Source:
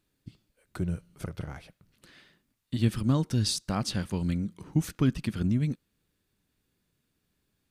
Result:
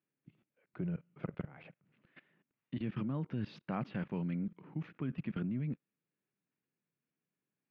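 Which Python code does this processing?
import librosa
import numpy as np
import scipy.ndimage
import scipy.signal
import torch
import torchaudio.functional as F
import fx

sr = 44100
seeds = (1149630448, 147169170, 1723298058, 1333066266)

y = scipy.signal.sosfilt(scipy.signal.ellip(3, 1.0, 50, [140.0, 2500.0], 'bandpass', fs=sr, output='sos'), x)
y = fx.level_steps(y, sr, step_db=19)
y = y * librosa.db_to_amplitude(2.5)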